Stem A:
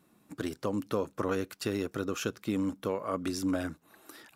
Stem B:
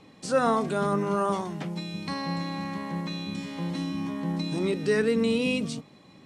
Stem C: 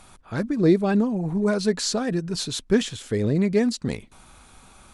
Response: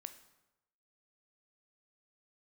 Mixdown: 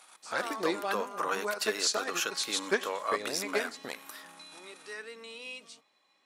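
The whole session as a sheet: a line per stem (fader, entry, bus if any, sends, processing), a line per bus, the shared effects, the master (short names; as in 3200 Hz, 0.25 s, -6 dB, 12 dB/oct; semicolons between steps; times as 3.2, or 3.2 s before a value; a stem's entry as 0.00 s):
-5.0 dB, 0.00 s, no send, no echo send, AGC gain up to 11 dB
-10.5 dB, 0.00 s, no send, no echo send, dry
-5.5 dB, 0.00 s, send -4 dB, echo send -17.5 dB, transient shaper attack +9 dB, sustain -12 dB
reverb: on, RT60 0.95 s, pre-delay 13 ms
echo: echo 95 ms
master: HPF 850 Hz 12 dB/oct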